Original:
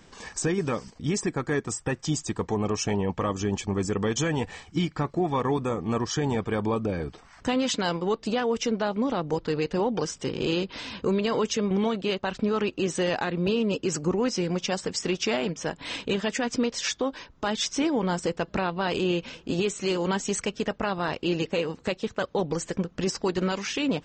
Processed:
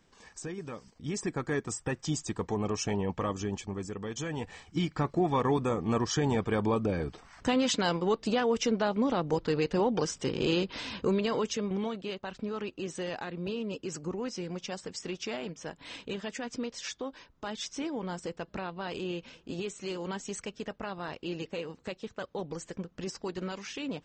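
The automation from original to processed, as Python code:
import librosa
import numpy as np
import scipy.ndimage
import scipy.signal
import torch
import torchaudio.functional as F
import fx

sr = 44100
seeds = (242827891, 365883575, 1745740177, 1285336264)

y = fx.gain(x, sr, db=fx.line((0.8, -13.0), (1.32, -4.5), (3.29, -4.5), (4.0, -12.0), (5.06, -1.5), (10.94, -1.5), (12.12, -10.0)))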